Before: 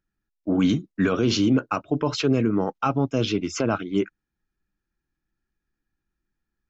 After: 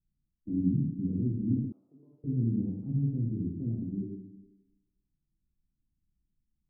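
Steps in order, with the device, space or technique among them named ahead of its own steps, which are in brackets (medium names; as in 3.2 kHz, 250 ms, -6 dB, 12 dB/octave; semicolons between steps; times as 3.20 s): club heard from the street (peak limiter -18.5 dBFS, peak gain reduction 8 dB; low-pass 230 Hz 24 dB/octave; reverberation RT60 1.1 s, pre-delay 6 ms, DRR -2.5 dB); 1.72–2.24 s: high-pass 930 Hz 12 dB/octave; trim -1.5 dB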